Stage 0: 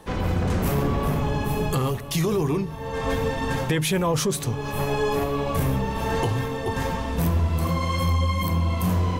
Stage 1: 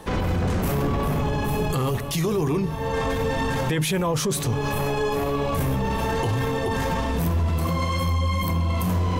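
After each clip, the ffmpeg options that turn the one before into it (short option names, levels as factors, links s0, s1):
-af "alimiter=limit=0.0794:level=0:latency=1:release=16,volume=1.88"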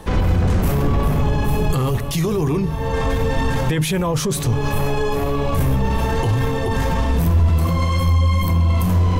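-af "lowshelf=f=90:g=11,volume=1.26"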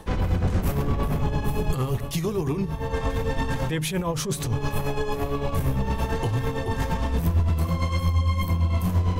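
-af "tremolo=f=8.8:d=0.57,volume=0.631"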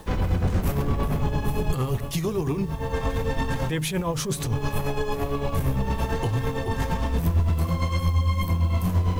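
-af "acrusher=bits=8:mix=0:aa=0.000001"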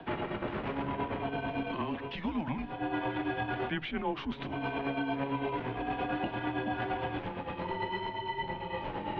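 -filter_complex "[0:a]acrossover=split=240|710[s0][s1][s2];[s0]acompressor=threshold=0.0158:ratio=4[s3];[s1]acompressor=threshold=0.02:ratio=4[s4];[s2]acompressor=threshold=0.0224:ratio=4[s5];[s3][s4][s5]amix=inputs=3:normalize=0,highpass=f=260:t=q:w=0.5412,highpass=f=260:t=q:w=1.307,lowpass=f=3400:t=q:w=0.5176,lowpass=f=3400:t=q:w=0.7071,lowpass=f=3400:t=q:w=1.932,afreqshift=-150"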